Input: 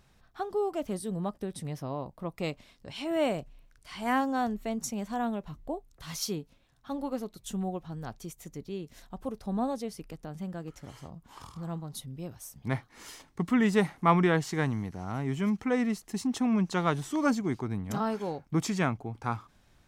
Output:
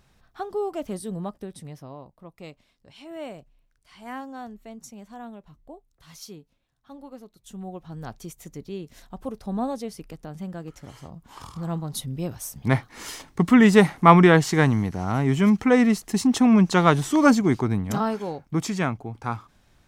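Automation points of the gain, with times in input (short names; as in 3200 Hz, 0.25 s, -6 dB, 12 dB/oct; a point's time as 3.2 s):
1.14 s +2 dB
2.23 s -8.5 dB
7.37 s -8.5 dB
8.02 s +3 dB
11 s +3 dB
12.11 s +10 dB
17.67 s +10 dB
18.25 s +3 dB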